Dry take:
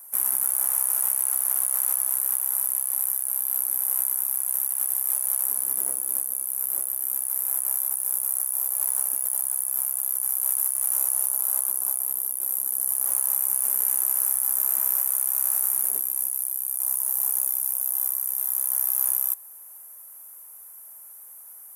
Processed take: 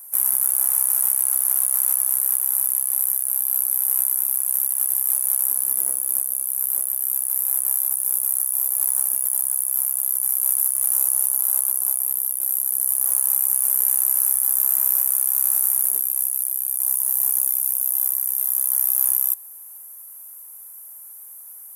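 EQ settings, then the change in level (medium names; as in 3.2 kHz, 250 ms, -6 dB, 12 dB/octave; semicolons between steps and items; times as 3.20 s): treble shelf 5.6 kHz +6 dB; -1.0 dB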